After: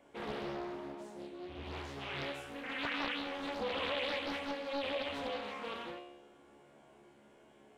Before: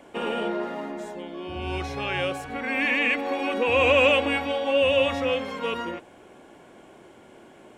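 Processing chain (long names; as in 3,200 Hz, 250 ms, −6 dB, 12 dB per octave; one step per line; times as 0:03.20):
tuned comb filter 71 Hz, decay 0.9 s, harmonics all, mix 90%
downward compressor 3 to 1, threshold −34 dBFS, peak gain reduction 6 dB
highs frequency-modulated by the lows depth 0.72 ms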